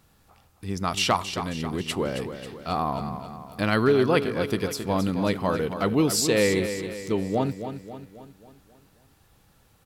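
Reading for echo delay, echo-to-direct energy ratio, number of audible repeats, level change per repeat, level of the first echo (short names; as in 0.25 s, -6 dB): 0.27 s, -8.5 dB, 5, -6.0 dB, -9.5 dB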